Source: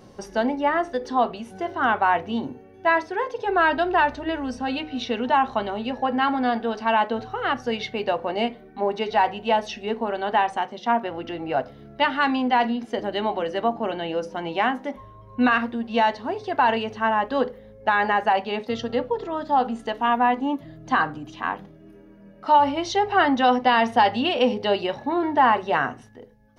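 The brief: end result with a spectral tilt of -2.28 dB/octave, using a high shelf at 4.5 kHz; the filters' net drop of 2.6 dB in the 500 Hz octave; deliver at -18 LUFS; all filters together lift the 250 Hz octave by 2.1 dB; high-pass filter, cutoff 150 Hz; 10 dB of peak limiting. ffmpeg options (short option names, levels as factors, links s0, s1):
-af "highpass=150,equalizer=f=250:t=o:g=4,equalizer=f=500:t=o:g=-4.5,highshelf=f=4500:g=3.5,volume=2.82,alimiter=limit=0.447:level=0:latency=1"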